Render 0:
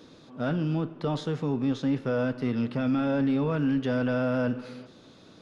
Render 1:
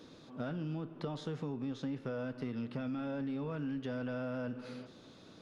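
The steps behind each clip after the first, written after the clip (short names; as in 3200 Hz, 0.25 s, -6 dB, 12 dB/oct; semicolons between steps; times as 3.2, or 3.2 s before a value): compressor 6:1, threshold -32 dBFS, peak gain reduction 9.5 dB; gain -3.5 dB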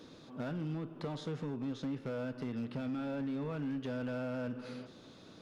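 hard clip -33.5 dBFS, distortion -19 dB; gain +1 dB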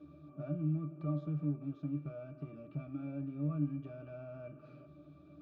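octave resonator D, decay 0.17 s; gain +9 dB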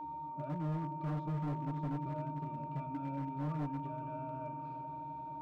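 whine 920 Hz -41 dBFS; swelling echo 86 ms, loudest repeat 5, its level -17 dB; hard clip -33 dBFS, distortion -11 dB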